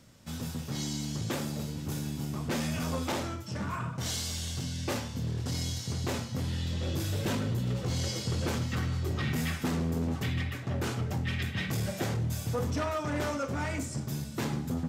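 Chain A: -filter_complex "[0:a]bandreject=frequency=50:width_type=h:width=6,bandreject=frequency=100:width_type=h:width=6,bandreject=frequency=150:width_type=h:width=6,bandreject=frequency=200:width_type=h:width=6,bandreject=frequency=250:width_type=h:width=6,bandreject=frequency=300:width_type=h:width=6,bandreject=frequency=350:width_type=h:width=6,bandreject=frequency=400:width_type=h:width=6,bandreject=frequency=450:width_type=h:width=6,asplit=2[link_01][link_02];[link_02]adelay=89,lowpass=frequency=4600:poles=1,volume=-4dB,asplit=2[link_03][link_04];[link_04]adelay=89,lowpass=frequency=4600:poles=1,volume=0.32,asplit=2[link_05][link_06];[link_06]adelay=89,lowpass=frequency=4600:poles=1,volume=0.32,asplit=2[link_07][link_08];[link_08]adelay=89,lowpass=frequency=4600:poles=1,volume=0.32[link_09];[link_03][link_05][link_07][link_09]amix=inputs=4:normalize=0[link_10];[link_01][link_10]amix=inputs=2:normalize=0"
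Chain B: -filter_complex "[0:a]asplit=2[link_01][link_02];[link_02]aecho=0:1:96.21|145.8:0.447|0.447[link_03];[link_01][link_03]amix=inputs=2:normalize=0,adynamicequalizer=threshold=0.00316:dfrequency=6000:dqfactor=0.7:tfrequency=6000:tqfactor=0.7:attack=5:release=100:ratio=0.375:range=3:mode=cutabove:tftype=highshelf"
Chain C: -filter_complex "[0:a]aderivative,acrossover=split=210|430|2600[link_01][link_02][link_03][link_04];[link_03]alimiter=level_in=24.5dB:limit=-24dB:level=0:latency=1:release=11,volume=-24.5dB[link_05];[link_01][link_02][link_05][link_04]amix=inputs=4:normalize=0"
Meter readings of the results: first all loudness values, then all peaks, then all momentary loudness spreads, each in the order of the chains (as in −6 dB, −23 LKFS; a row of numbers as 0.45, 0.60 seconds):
−32.0, −31.0, −43.0 LKFS; −18.5, −17.0, −25.5 dBFS; 5, 5, 9 LU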